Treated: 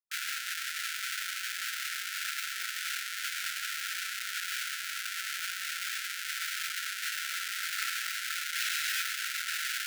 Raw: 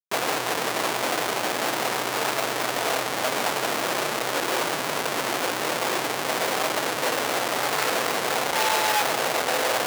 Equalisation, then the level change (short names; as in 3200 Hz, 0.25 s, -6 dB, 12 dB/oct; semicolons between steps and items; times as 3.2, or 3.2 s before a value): brick-wall FIR high-pass 1300 Hz; -6.5 dB